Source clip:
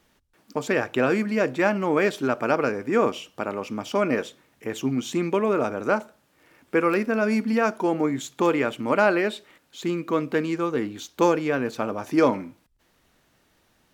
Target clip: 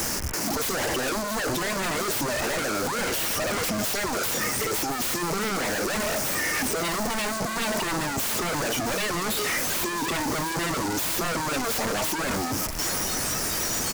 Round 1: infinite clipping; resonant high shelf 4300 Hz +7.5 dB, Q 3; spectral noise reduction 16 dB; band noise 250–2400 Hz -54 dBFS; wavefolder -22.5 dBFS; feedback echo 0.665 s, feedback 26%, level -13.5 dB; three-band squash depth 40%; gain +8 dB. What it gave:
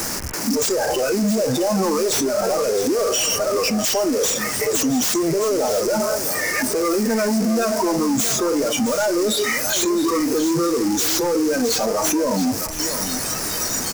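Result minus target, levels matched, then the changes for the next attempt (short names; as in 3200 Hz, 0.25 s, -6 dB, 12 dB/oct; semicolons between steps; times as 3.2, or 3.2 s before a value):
wavefolder: distortion -9 dB
change: wavefolder -30.5 dBFS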